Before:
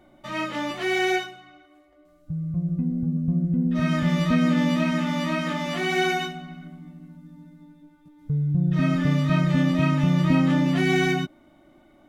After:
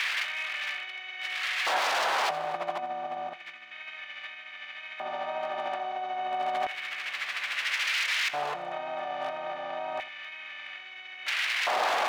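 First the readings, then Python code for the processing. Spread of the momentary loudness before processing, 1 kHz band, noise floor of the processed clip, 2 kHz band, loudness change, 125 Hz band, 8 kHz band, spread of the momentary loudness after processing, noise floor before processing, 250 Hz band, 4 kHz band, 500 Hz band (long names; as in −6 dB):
11 LU, +1.5 dB, −45 dBFS, 0.0 dB, −8.0 dB, −38.0 dB, +0.5 dB, 14 LU, −57 dBFS, −30.5 dB, +1.5 dB, −6.0 dB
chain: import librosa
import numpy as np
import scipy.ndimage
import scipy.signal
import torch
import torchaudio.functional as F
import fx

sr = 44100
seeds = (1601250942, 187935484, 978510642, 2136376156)

y = fx.bin_compress(x, sr, power=0.2)
y = scipy.signal.sosfilt(scipy.signal.butter(2, 2700.0, 'lowpass', fs=sr, output='sos'), y)
y = fx.low_shelf(y, sr, hz=340.0, db=-2.5)
y = y + 0.62 * np.pad(y, (int(5.1 * sr / 1000.0), 0))[:len(y)]
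y = fx.dynamic_eq(y, sr, hz=730.0, q=1.6, threshold_db=-36.0, ratio=4.0, max_db=7)
y = fx.over_compress(y, sr, threshold_db=-23.0, ratio=-0.5)
y = 10.0 ** (-22.0 / 20.0) * (np.abs((y / 10.0 ** (-22.0 / 20.0) + 3.0) % 4.0 - 2.0) - 1.0)
y = fx.filter_lfo_highpass(y, sr, shape='square', hz=0.3, low_hz=730.0, high_hz=2100.0, q=2.2)
y = y + 10.0 ** (-17.0 / 20.0) * np.pad(y, (int(83 * sr / 1000.0), 0))[:len(y)]
y = y * librosa.db_to_amplitude(-2.0)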